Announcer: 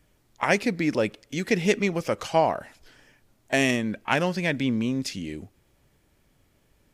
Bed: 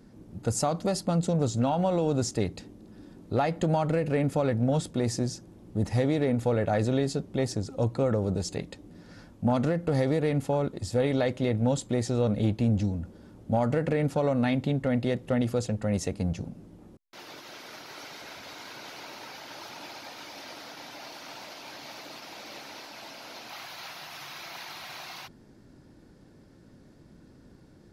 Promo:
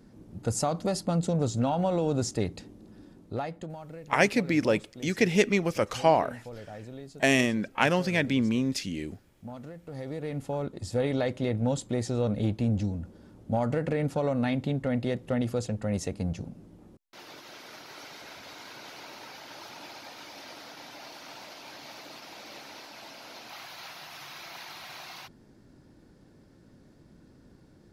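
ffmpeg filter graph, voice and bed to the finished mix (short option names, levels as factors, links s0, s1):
-filter_complex "[0:a]adelay=3700,volume=0.944[s0];[1:a]volume=5.01,afade=t=out:st=2.87:d=0.88:silence=0.158489,afade=t=in:st=9.85:d=1.12:silence=0.177828[s1];[s0][s1]amix=inputs=2:normalize=0"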